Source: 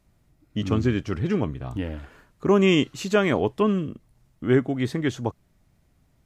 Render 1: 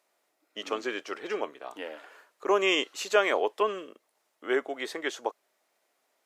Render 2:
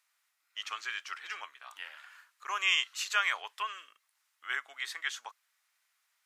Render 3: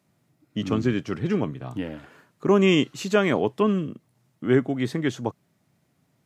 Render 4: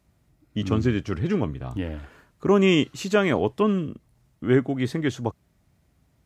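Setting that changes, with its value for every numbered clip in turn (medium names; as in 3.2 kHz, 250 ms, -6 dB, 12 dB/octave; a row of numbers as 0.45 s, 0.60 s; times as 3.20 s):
high-pass, cutoff frequency: 450 Hz, 1.2 kHz, 120 Hz, 40 Hz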